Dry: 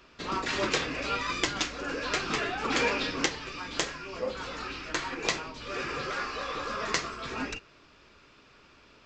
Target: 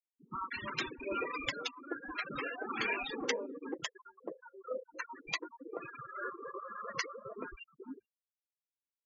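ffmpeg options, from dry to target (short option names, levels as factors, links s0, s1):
-filter_complex "[0:a]afftfilt=real='re*gte(hypot(re,im),0.0708)':imag='im*gte(hypot(re,im),0.0708)':win_size=1024:overlap=0.75,acrossover=split=230|780[s0][s1][s2];[s2]adelay=50[s3];[s1]adelay=480[s4];[s0][s4][s3]amix=inputs=3:normalize=0,volume=0.631"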